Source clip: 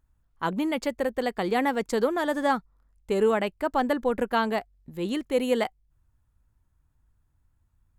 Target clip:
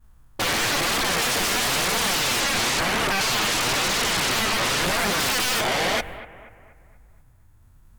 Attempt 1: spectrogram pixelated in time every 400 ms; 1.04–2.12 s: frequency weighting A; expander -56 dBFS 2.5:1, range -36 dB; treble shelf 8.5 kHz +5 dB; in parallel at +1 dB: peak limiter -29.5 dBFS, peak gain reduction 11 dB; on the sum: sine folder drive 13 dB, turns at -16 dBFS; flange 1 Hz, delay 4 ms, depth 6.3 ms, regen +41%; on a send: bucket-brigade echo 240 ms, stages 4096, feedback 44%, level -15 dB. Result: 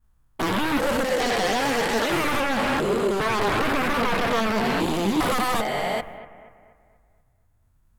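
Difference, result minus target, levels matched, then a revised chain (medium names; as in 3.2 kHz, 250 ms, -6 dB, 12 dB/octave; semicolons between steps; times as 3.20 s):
sine folder: distortion -36 dB
spectrogram pixelated in time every 400 ms; 1.04–2.12 s: frequency weighting A; expander -56 dBFS 2.5:1, range -36 dB; treble shelf 8.5 kHz +5 dB; in parallel at +1 dB: peak limiter -29.5 dBFS, peak gain reduction 11 dB; on the sum: sine folder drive 23 dB, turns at -16 dBFS; flange 1 Hz, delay 4 ms, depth 6.3 ms, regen +41%; on a send: bucket-brigade echo 240 ms, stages 4096, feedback 44%, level -15 dB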